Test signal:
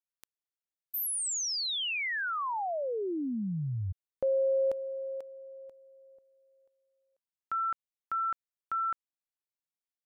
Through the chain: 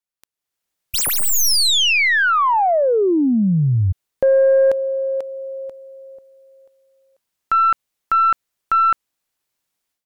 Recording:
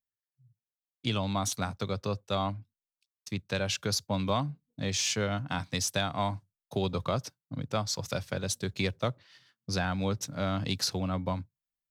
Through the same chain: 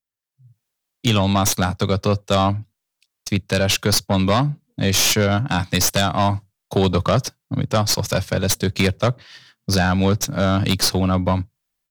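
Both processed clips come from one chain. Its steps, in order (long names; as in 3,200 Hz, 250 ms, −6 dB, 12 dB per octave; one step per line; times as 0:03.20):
stylus tracing distortion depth 0.052 ms
sine wavefolder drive 7 dB, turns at −14 dBFS
automatic gain control gain up to 15 dB
level −8 dB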